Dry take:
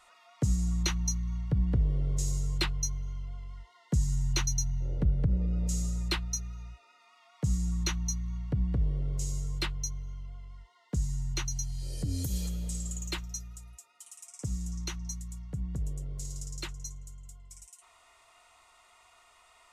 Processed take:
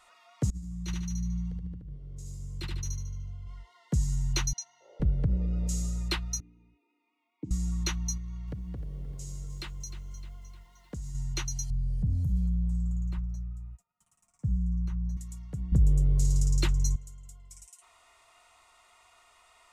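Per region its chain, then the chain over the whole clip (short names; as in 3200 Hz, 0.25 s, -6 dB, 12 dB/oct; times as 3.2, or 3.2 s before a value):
0.5–3.47 EQ curve 130 Hz 0 dB, 810 Hz -14 dB, 8900 Hz -9 dB + negative-ratio compressor -32 dBFS, ratio -0.5 + feedback echo 74 ms, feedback 44%, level -3 dB
4.53–5 HPF 560 Hz 24 dB/oct + air absorption 81 m
6.4–7.51 vowel filter u + resonant low shelf 650 Hz +8 dB, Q 3
8.17–11.15 compressor 4:1, threshold -35 dBFS + lo-fi delay 0.306 s, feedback 55%, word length 10-bit, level -12 dB
11.7–15.17 sample leveller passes 2 + EQ curve 200 Hz 0 dB, 320 Hz -20 dB, 1100 Hz -15 dB, 3600 Hz -29 dB
15.72–16.96 low shelf 350 Hz +11.5 dB + fast leveller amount 50%
whole clip: dry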